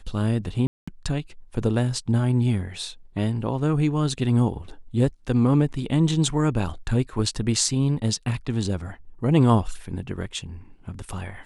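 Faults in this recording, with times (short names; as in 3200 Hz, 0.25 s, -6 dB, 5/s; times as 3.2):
0.67–0.88 gap 0.205 s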